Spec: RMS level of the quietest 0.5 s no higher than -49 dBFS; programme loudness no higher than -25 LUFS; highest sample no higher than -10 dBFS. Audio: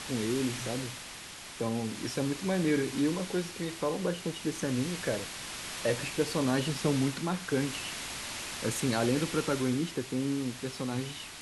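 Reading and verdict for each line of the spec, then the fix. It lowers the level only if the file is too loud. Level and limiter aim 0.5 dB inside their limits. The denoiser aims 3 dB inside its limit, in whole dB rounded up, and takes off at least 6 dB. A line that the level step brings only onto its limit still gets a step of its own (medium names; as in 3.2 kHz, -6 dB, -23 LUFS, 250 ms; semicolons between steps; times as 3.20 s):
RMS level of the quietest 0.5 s -45 dBFS: fail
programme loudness -32.0 LUFS: pass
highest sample -15.0 dBFS: pass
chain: noise reduction 7 dB, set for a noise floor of -45 dBFS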